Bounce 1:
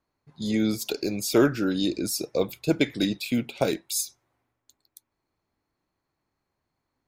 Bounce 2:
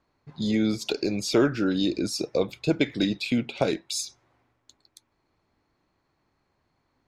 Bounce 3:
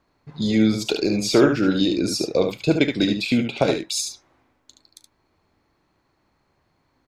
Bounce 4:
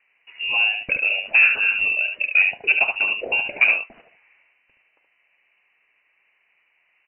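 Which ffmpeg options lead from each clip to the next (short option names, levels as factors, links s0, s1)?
-af "lowpass=5500,acompressor=threshold=0.00794:ratio=1.5,volume=2.51"
-af "aecho=1:1:38|73:0.141|0.473,volume=1.68"
-filter_complex "[0:a]equalizer=f=160:t=o:w=0.67:g=-8,equalizer=f=630:t=o:w=0.67:g=5,equalizer=f=1600:t=o:w=0.67:g=-7,asplit=2[s0][s1];[s1]highpass=f=720:p=1,volume=5.01,asoftclip=type=tanh:threshold=0.708[s2];[s0][s2]amix=inputs=2:normalize=0,lowpass=f=1900:p=1,volume=0.501,lowpass=f=2600:t=q:w=0.5098,lowpass=f=2600:t=q:w=0.6013,lowpass=f=2600:t=q:w=0.9,lowpass=f=2600:t=q:w=2.563,afreqshift=-3000,volume=0.841"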